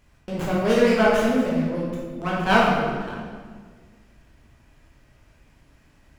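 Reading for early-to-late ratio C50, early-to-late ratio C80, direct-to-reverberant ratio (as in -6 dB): -0.5 dB, 1.5 dB, -6.0 dB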